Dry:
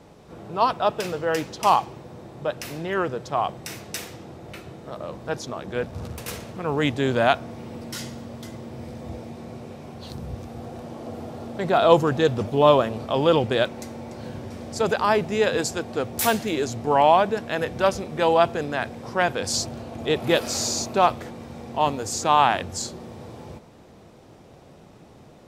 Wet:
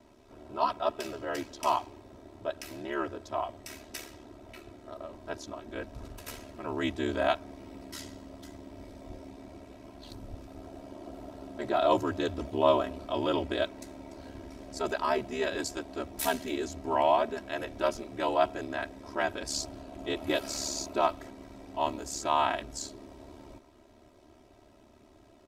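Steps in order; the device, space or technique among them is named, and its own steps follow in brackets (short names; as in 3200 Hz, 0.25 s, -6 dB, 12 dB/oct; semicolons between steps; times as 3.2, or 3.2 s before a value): ring-modulated robot voice (ring modulator 36 Hz; comb 3.1 ms, depth 86%); gain -8 dB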